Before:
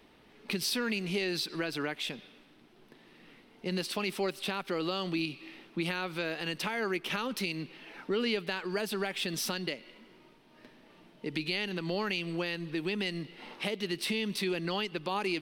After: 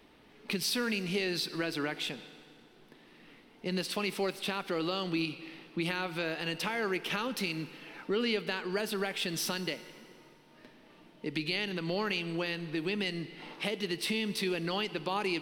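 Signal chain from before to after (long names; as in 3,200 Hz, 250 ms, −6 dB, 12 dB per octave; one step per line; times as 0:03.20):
feedback delay network reverb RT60 2.6 s, low-frequency decay 0.8×, high-frequency decay 0.8×, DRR 14 dB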